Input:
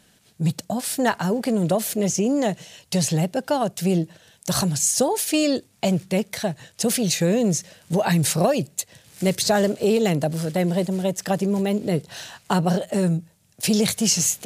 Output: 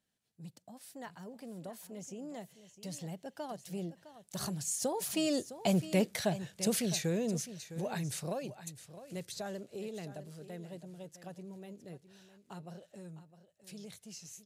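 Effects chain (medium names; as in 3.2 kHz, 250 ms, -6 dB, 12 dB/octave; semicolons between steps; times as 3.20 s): Doppler pass-by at 6.06 s, 11 m/s, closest 6.3 m; delay 659 ms -13.5 dB; trim -6.5 dB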